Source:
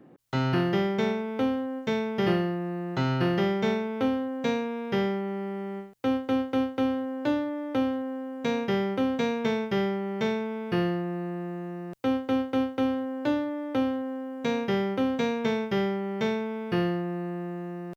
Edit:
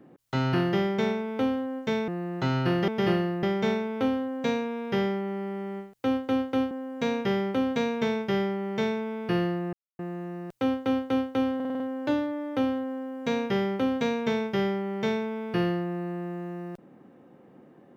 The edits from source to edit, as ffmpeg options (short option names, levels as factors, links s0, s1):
-filter_complex "[0:a]asplit=12[s0][s1][s2][s3][s4][s5][s6][s7][s8][s9][s10][s11];[s0]atrim=end=2.082[s12];[s1]atrim=start=2.628:end=3.432[s13];[s2]atrim=start=2.078:end=2.632[s14];[s3]atrim=start=3.428:end=6.712[s15];[s4]atrim=start=8.138:end=11.16,asetpts=PTS-STARTPTS,afade=t=out:st=3.018:d=0.004:c=hsin[s16];[s5]atrim=start=11.16:end=11.42,asetpts=PTS-STARTPTS,volume=0[s17];[s6]atrim=start=11.42:end=13.032,asetpts=PTS-STARTPTS,afade=t=in:d=0.004:c=hsin[s18];[s7]atrim=start=12.978:end=13.032[s19];[s8]atrim=start=12.978:end=13.032[s20];[s9]atrim=start=12.978:end=13.032[s21];[s10]atrim=start=12.978:end=13.032[s22];[s11]atrim=start=12.978[s23];[s12][s13]acrossfade=d=0.004:c1=hsin:c2=hsin[s24];[s24][s14]acrossfade=d=0.004:c1=hsin:c2=hsin[s25];[s25][s15]acrossfade=d=0.004:c1=hsin:c2=hsin[s26];[s16][s17][s18]concat=n=3:v=0:a=1[s27];[s26][s27]acrossfade=d=0.004:c1=hsin:c2=hsin[s28];[s28][s19]acrossfade=d=0.004:c1=hsin:c2=hsin[s29];[s29][s20]acrossfade=d=0.004:c1=hsin:c2=hsin[s30];[s30][s21]acrossfade=d=0.004:c1=hsin:c2=hsin[s31];[s31][s22]acrossfade=d=0.004:c1=hsin:c2=hsin[s32];[s32][s23]acrossfade=d=0.004:c1=hsin:c2=hsin"